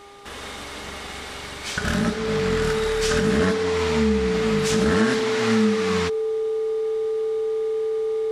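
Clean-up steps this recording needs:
hum removal 403.2 Hz, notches 3
notch filter 440 Hz, Q 30

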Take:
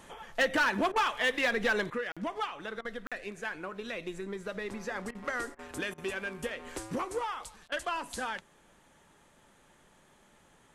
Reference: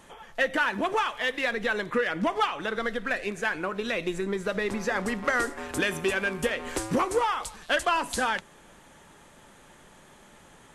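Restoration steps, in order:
clipped peaks rebuilt −21.5 dBFS
repair the gap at 0:02.12/0:03.07, 46 ms
repair the gap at 0:00.92/0:02.81/0:05.11/0:05.55/0:05.94/0:07.68, 38 ms
level correction +9 dB, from 0:01.90

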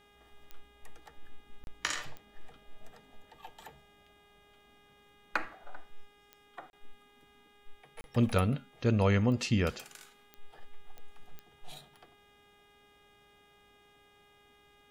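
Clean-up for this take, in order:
click removal
hum removal 409.6 Hz, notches 9
repair the gap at 0:01.64/0:06.70/0:08.01, 31 ms

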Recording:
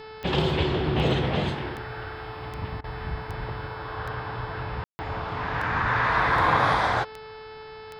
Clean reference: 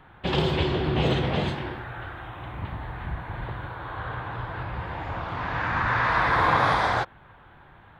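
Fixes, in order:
click removal
hum removal 435.9 Hz, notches 12
ambience match 0:04.84–0:04.99
repair the gap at 0:02.81, 29 ms

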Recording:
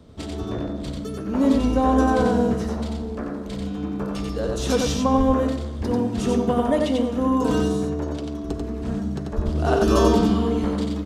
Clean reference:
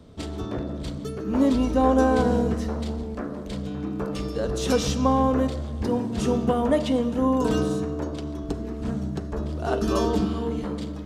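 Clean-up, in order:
0:05.17–0:05.29: high-pass filter 140 Hz 24 dB per octave
0:09.35–0:09.47: high-pass filter 140 Hz 24 dB per octave
echo removal 91 ms −3 dB
0:09.45: level correction −4 dB

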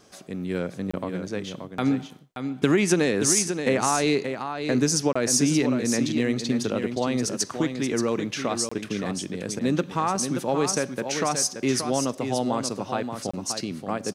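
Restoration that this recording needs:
repair the gap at 0:00.91/0:05.13/0:08.69/0:13.31, 25 ms
echo removal 578 ms −7.5 dB

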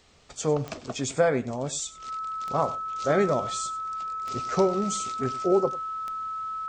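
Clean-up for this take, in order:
click removal
notch filter 1,300 Hz, Q 30
echo removal 97 ms −17.5 dB

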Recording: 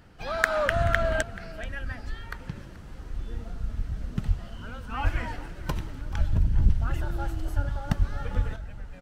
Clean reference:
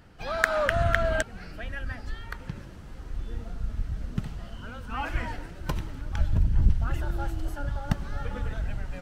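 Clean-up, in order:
high-pass at the plosives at 0:04.27/0:05.03/0:07.55/0:07.98/0:08.35
echo removal 432 ms −19 dB
level 0 dB, from 0:08.56 +8.5 dB

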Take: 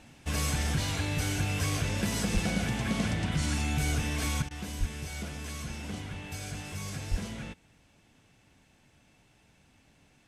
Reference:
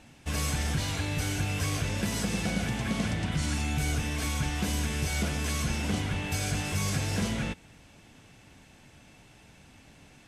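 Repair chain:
clipped peaks rebuilt −19 dBFS
high-pass at the plosives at 0:02.33/0:04.79/0:07.10
repair the gap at 0:04.49, 17 ms
level 0 dB, from 0:04.42 +8.5 dB

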